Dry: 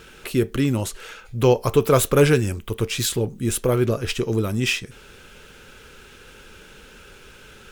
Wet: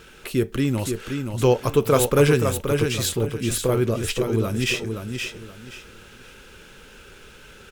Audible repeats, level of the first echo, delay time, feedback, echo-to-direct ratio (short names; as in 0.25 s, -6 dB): 3, -6.0 dB, 0.524 s, 26%, -5.5 dB